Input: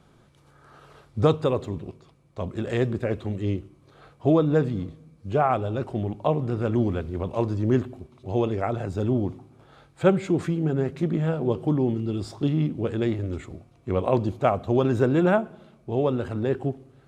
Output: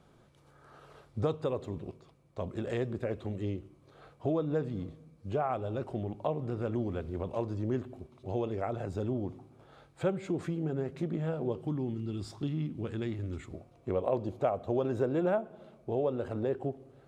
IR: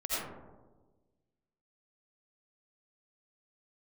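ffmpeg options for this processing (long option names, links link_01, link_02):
-af "asetnsamples=nb_out_samples=441:pad=0,asendcmd='11.61 equalizer g -5.5;13.53 equalizer g 8.5',equalizer=frequency=560:width=1.1:gain=3.5,acompressor=threshold=-27dB:ratio=2,volume=-5.5dB"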